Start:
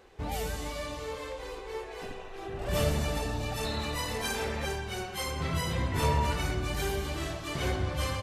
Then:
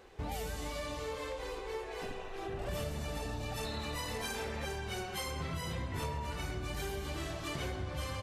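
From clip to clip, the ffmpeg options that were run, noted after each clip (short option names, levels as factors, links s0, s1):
-af "acompressor=threshold=0.0178:ratio=6"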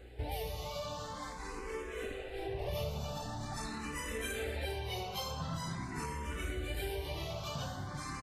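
-filter_complex "[0:a]aecho=1:1:911:0.251,aeval=exprs='val(0)+0.00224*(sin(2*PI*60*n/s)+sin(2*PI*2*60*n/s)/2+sin(2*PI*3*60*n/s)/3+sin(2*PI*4*60*n/s)/4+sin(2*PI*5*60*n/s)/5)':c=same,asplit=2[s0][s1];[s1]afreqshift=0.45[s2];[s0][s2]amix=inputs=2:normalize=1,volume=1.26"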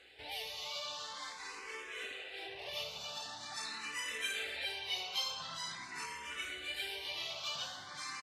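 -af "bandpass=f=3500:t=q:w=1:csg=0,volume=2.24"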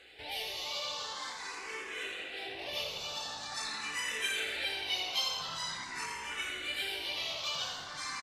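-filter_complex "[0:a]asplit=7[s0][s1][s2][s3][s4][s5][s6];[s1]adelay=84,afreqshift=-53,volume=0.398[s7];[s2]adelay=168,afreqshift=-106,volume=0.211[s8];[s3]adelay=252,afreqshift=-159,volume=0.112[s9];[s4]adelay=336,afreqshift=-212,volume=0.0596[s10];[s5]adelay=420,afreqshift=-265,volume=0.0313[s11];[s6]adelay=504,afreqshift=-318,volume=0.0166[s12];[s0][s7][s8][s9][s10][s11][s12]amix=inputs=7:normalize=0,volume=1.5"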